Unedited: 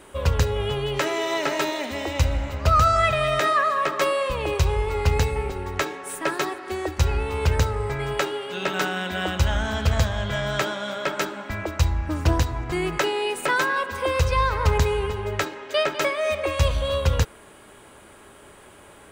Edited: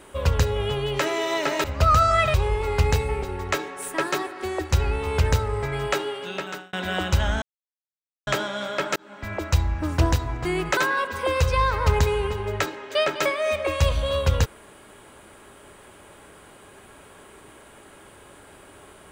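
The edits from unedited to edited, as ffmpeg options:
ffmpeg -i in.wav -filter_complex "[0:a]asplit=8[link_01][link_02][link_03][link_04][link_05][link_06][link_07][link_08];[link_01]atrim=end=1.642[link_09];[link_02]atrim=start=2.488:end=3.192[link_10];[link_03]atrim=start=4.608:end=9,asetpts=PTS-STARTPTS,afade=type=out:start_time=3.792:duration=0.6[link_11];[link_04]atrim=start=9:end=9.69,asetpts=PTS-STARTPTS,afade=type=in:duration=0.004:curve=hsin,afade=type=out:start_time=0.686:duration=0.004:curve=hsin[link_12];[link_05]atrim=start=9.69:end=10.54,asetpts=PTS-STARTPTS,volume=0[link_13];[link_06]atrim=start=10.54:end=11.23,asetpts=PTS-STARTPTS,afade=type=in:duration=0.004:curve=hsin,afade=type=out:start_time=0.686:duration=0.004:curve=hsin[link_14];[link_07]atrim=start=11.23:end=13.042,asetpts=PTS-STARTPTS,afade=type=in:duration=0.43[link_15];[link_08]atrim=start=13.558[link_16];[link_09][link_10]acrossfade=duration=0.004:curve1=hsin:curve2=hsin[link_17];[link_11][link_12][link_13][link_14][link_15]concat=n=5:v=0:a=1[link_18];[link_17][link_18]acrossfade=duration=0.004:curve1=hsin:curve2=hsin[link_19];[link_19][link_16]acrossfade=duration=0.004:curve1=hsin:curve2=hsin" out.wav

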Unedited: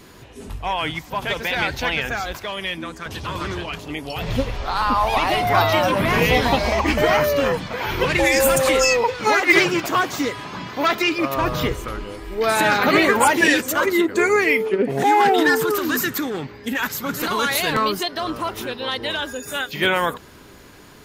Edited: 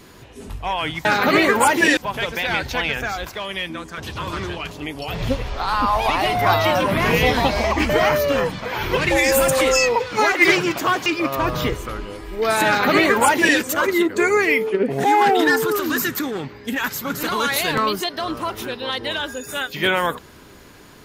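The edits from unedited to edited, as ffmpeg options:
ffmpeg -i in.wav -filter_complex "[0:a]asplit=4[link_01][link_02][link_03][link_04];[link_01]atrim=end=1.052[link_05];[link_02]atrim=start=12.648:end=13.572[link_06];[link_03]atrim=start=1.048:end=10.142[link_07];[link_04]atrim=start=11.048[link_08];[link_05][link_06]acrossfade=duration=0.004:curve1=hsin:curve2=hsin[link_09];[link_09][link_07]acrossfade=duration=0.004:curve1=hsin:curve2=hsin[link_10];[link_10][link_08]acrossfade=duration=0.004:curve1=hsin:curve2=hsin" out.wav

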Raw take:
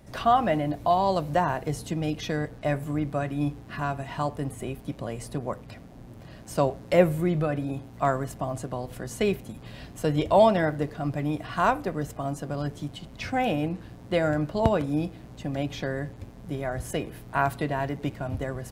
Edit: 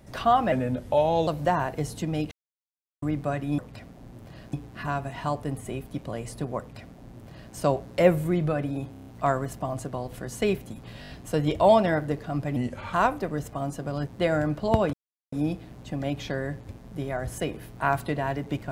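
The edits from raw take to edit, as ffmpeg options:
ffmpeg -i in.wav -filter_complex "[0:a]asplit=20[link_01][link_02][link_03][link_04][link_05][link_06][link_07][link_08][link_09][link_10][link_11][link_12][link_13][link_14][link_15][link_16][link_17][link_18][link_19][link_20];[link_01]atrim=end=0.524[link_21];[link_02]atrim=start=0.52:end=1.16,asetpts=PTS-STARTPTS,asetrate=37485,aresample=44100[link_22];[link_03]atrim=start=1.156:end=2.2,asetpts=PTS-STARTPTS,afade=type=out:start_time=1.04:duration=0.004:curve=hsin[link_23];[link_04]atrim=start=2.2:end=2.91,asetpts=PTS-STARTPTS,volume=0[link_24];[link_05]atrim=start=2.91:end=3.472,asetpts=PTS-STARTPTS,afade=type=in:duration=0.004:curve=hsin[link_25];[link_06]atrim=start=5.528:end=6.482[link_26];[link_07]atrim=start=3.468:end=7.882[link_27];[link_08]atrim=start=7.848:end=7.882[link_28];[link_09]atrim=start=7.848:end=7.882[link_29];[link_10]atrim=start=7.848:end=7.882[link_30];[link_11]atrim=start=7.848:end=7.882[link_31];[link_12]atrim=start=7.848:end=9.822[link_32];[link_13]atrim=start=9.798:end=9.822[link_33];[link_14]atrim=start=9.798:end=9.822[link_34];[link_15]atrim=start=9.798:end=9.822[link_35];[link_16]atrim=start=9.798:end=11.274[link_36];[link_17]atrim=start=11.27:end=11.57,asetpts=PTS-STARTPTS,asetrate=35721,aresample=44100,atrim=end_sample=16333,asetpts=PTS-STARTPTS[link_37];[link_18]atrim=start=11.566:end=12.712[link_38];[link_19]atrim=start=13.988:end=14.85,asetpts=PTS-STARTPTS,afade=type=out:start_time=0.858:duration=0.004:curve=hsin,apad=pad_dur=0.39[link_39];[link_20]atrim=start=14.85,asetpts=PTS-STARTPTS,afade=type=in:duration=0.004:curve=hsin[link_40];[link_21][link_22]acrossfade=duration=0.004:curve1=hsin:curve2=hsin[link_41];[link_23][link_24][link_25]concat=n=3:v=0:a=1[link_42];[link_41][link_42]acrossfade=duration=0.004:curve1=hsin:curve2=hsin[link_43];[link_43][link_26]acrossfade=duration=0.004:curve1=hsin:curve2=hsin[link_44];[link_44][link_27]acrossfade=duration=0.004:curve1=hsin:curve2=hsin[link_45];[link_45][link_28]acrossfade=duration=0.004:curve1=hsin:curve2=hsin[link_46];[link_46][link_29]acrossfade=duration=0.004:curve1=hsin:curve2=hsin[link_47];[link_47][link_30]acrossfade=duration=0.004:curve1=hsin:curve2=hsin[link_48];[link_48][link_31]acrossfade=duration=0.004:curve1=hsin:curve2=hsin[link_49];[link_49][link_32]acrossfade=duration=0.004:curve1=hsin:curve2=hsin[link_50];[link_50][link_33]acrossfade=duration=0.004:curve1=hsin:curve2=hsin[link_51];[link_51][link_34]acrossfade=duration=0.004:curve1=hsin:curve2=hsin[link_52];[link_52][link_35]acrossfade=duration=0.004:curve1=hsin:curve2=hsin[link_53];[link_53][link_36]acrossfade=duration=0.004:curve1=hsin:curve2=hsin[link_54];[link_54][link_37]acrossfade=duration=0.004:curve1=hsin:curve2=hsin[link_55];[link_55][link_38]acrossfade=duration=0.004:curve1=hsin:curve2=hsin[link_56];[link_39][link_40]concat=n=2:v=0:a=1[link_57];[link_56][link_57]acrossfade=duration=0.004:curve1=hsin:curve2=hsin" out.wav

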